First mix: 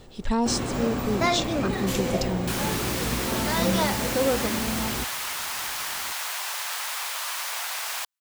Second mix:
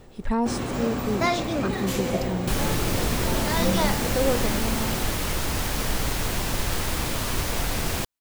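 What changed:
speech: add band shelf 4800 Hz -9.5 dB; second sound: remove HPF 820 Hz 24 dB/oct

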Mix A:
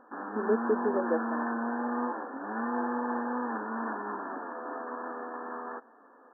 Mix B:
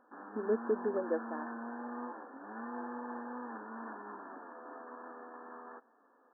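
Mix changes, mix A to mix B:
speech -4.0 dB; background -10.5 dB

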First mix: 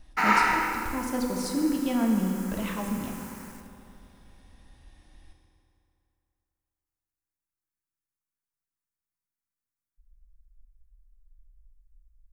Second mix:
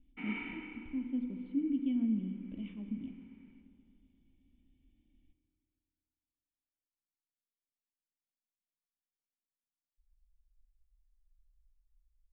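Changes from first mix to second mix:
speech: send -8.0 dB; master: add vocal tract filter i

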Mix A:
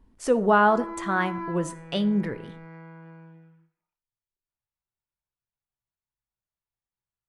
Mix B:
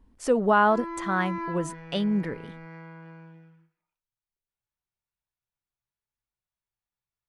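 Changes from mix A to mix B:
speech: send off; background: add high shelf 2500 Hz +9 dB

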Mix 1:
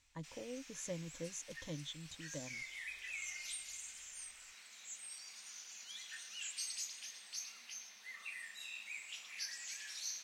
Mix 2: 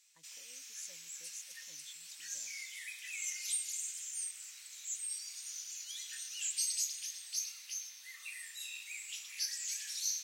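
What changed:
background +9.5 dB; master: add pre-emphasis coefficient 0.97

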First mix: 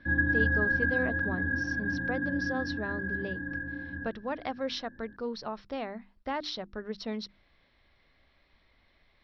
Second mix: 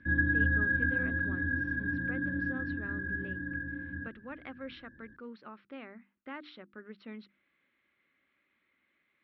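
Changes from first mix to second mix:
speech: add speaker cabinet 330–2400 Hz, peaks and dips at 450 Hz -8 dB, 660 Hz -3 dB, 990 Hz -7 dB, 1800 Hz -5 dB; master: add bell 720 Hz -15 dB 0.78 oct

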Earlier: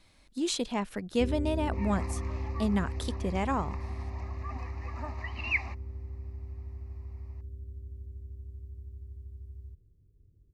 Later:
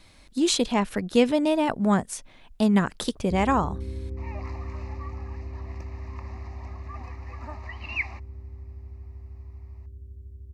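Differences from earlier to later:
speech +8.0 dB; first sound: entry +2.10 s; second sound: entry +2.45 s

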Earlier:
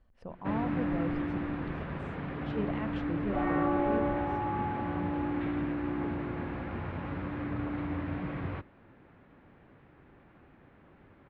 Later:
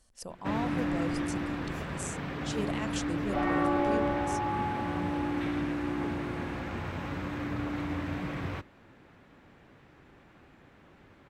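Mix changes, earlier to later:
speech: add tone controls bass -3 dB, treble +10 dB; master: remove air absorption 410 m

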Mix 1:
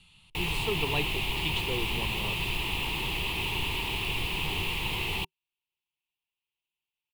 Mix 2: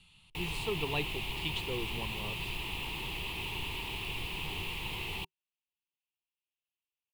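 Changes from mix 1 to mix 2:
speech -3.0 dB; background -7.0 dB

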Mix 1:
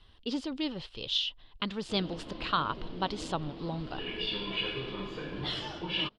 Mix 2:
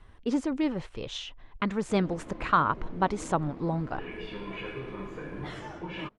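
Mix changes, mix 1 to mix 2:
speech +6.5 dB; master: add band shelf 3800 Hz -15.5 dB 1.1 oct

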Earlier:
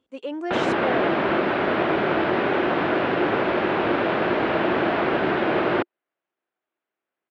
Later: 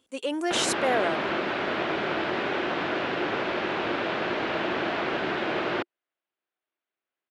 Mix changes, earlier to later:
background -8.5 dB; master: remove tape spacing loss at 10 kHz 26 dB

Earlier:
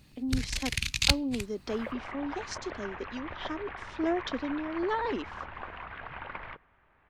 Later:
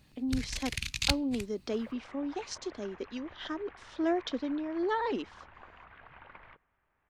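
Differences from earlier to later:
first sound -4.5 dB; second sound -11.5 dB

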